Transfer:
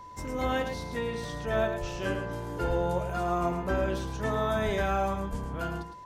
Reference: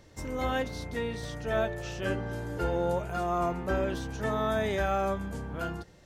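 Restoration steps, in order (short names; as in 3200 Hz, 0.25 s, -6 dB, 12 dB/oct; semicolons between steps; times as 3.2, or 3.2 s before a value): notch 1000 Hz, Q 30; de-plosive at 1.8/2.67/4.65/5.3; inverse comb 0.109 s -8 dB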